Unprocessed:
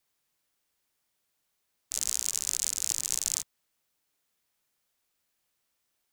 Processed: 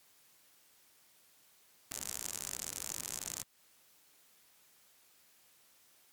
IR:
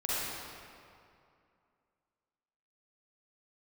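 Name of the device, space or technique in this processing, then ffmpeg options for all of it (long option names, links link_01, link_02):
podcast mastering chain: -af "highpass=frequency=100:poles=1,deesser=0.6,acompressor=threshold=-49dB:ratio=2,alimiter=level_in=4.5dB:limit=-24dB:level=0:latency=1:release=32,volume=-4.5dB,volume=13dB" -ar 48000 -c:a libmp3lame -b:a 96k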